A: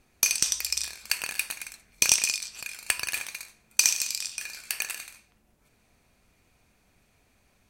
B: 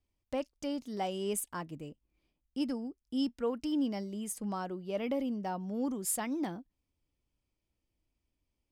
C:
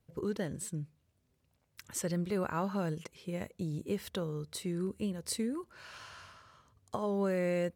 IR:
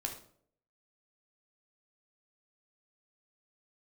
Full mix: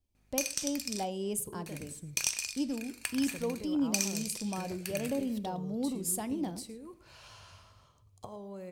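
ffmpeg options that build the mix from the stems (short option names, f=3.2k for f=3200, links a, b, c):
-filter_complex "[0:a]aeval=exprs='val(0)+0.00126*(sin(2*PI*50*n/s)+sin(2*PI*2*50*n/s)/2+sin(2*PI*3*50*n/s)/3+sin(2*PI*4*50*n/s)/4+sin(2*PI*5*50*n/s)/5)':c=same,adelay=150,volume=-10dB,asplit=3[a][b][c];[a]atrim=end=1.05,asetpts=PTS-STARTPTS,afade=t=out:st=1.046:d=0.004:c=hsin[d];[b]atrim=start=1.05:end=1.66,asetpts=PTS-STARTPTS,volume=0[e];[c]atrim=start=1.66,asetpts=PTS-STARTPTS,afade=t=in:d=0.004:c=hsin[f];[d][e][f]concat=n=3:v=0:a=1[g];[1:a]equalizer=f=1.6k:t=o:w=1.7:g=-9.5,acontrast=56,volume=-7dB,asplit=2[h][i];[i]volume=-9dB[j];[2:a]equalizer=f=100:t=o:w=0.67:g=5,equalizer=f=250:t=o:w=0.67:g=-6,equalizer=f=1.6k:t=o:w=0.67:g=-11,acompressor=threshold=-42dB:ratio=5,adelay=1300,volume=-2.5dB,asplit=3[k][l][m];[l]volume=-9.5dB[n];[m]volume=-15.5dB[o];[3:a]atrim=start_sample=2205[p];[j][n]amix=inputs=2:normalize=0[q];[q][p]afir=irnorm=-1:irlink=0[r];[o]aecho=0:1:111:1[s];[g][h][k][r][s]amix=inputs=5:normalize=0"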